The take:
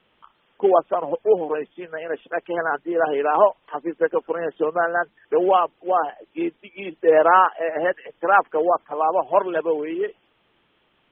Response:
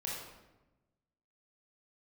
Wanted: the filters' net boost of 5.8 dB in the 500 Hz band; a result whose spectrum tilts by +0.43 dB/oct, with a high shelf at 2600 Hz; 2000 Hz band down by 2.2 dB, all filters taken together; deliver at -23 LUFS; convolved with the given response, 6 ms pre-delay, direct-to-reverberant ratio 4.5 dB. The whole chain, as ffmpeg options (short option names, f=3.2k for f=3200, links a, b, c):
-filter_complex "[0:a]equalizer=f=500:t=o:g=7,equalizer=f=2k:t=o:g=-7,highshelf=f=2.6k:g=7,asplit=2[a][b];[1:a]atrim=start_sample=2205,adelay=6[c];[b][c]afir=irnorm=-1:irlink=0,volume=-6.5dB[d];[a][d]amix=inputs=2:normalize=0,volume=-7.5dB"